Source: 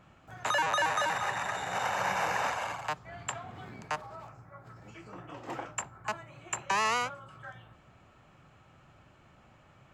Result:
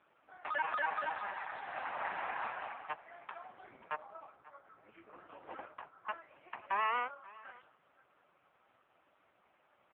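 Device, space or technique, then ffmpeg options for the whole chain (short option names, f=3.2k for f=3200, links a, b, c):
satellite phone: -filter_complex "[0:a]asettb=1/sr,asplit=3[a][b][c];[a]atrim=end=3.854[d];[b]atrim=start=3.85:end=4.27,asetpts=PTS-STARTPTS,afade=t=in:d=0.004:c=qsin,afade=t=out:st=0.416:d=0.004:c=qsin,lowshelf=f=380:g=4[e];[c]atrim=start=4.266[f];[d][e]acrossfade=d=0.004:c1=hsin:c2=qsin[g];[g][f]acrossfade=d=0.004:c1=qsin:c2=hsin,highpass=370,lowpass=3k,aecho=1:1:539:0.1,volume=-3.5dB" -ar 8000 -c:a libopencore_amrnb -b:a 4750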